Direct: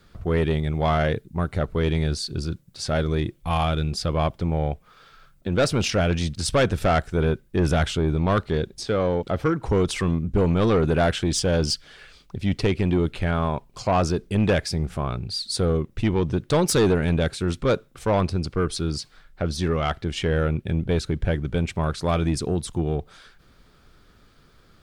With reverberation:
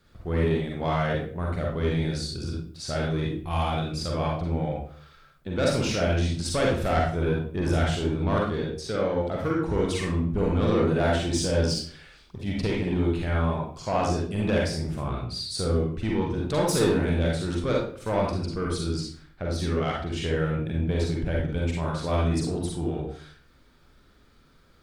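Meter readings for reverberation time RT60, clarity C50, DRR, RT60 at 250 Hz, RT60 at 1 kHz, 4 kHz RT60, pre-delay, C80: 0.50 s, 1.0 dB, -2.5 dB, 0.55 s, 0.45 s, 0.35 s, 39 ms, 6.5 dB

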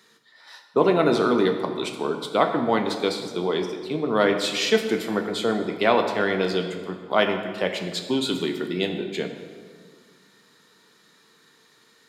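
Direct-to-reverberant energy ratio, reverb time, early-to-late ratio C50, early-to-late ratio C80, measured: 4.5 dB, 1.7 s, 7.5 dB, 8.5 dB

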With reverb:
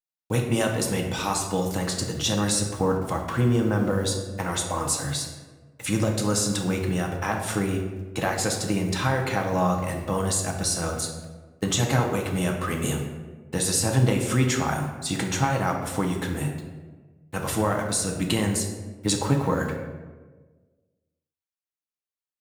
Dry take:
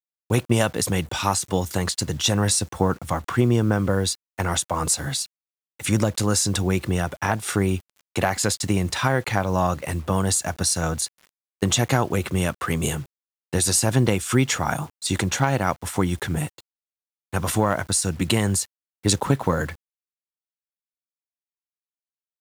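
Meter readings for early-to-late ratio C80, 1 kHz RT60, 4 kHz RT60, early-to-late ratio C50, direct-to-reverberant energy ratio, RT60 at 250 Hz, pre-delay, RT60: 7.0 dB, 1.2 s, 0.75 s, 5.5 dB, 1.0 dB, 1.6 s, 4 ms, 1.4 s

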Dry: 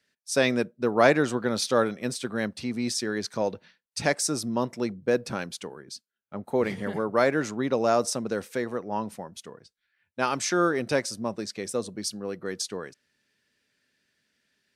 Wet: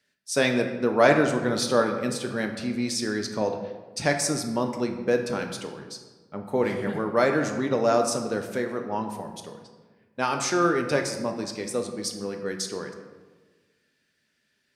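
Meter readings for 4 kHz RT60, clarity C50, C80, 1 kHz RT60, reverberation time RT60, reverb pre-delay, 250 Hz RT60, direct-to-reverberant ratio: 0.80 s, 7.0 dB, 9.0 dB, 1.3 s, 1.4 s, 6 ms, 1.7 s, 4.5 dB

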